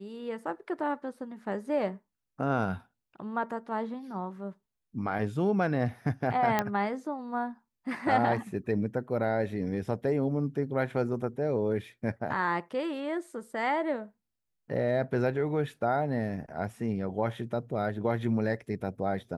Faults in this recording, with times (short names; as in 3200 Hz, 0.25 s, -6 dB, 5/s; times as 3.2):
6.59 pop -12 dBFS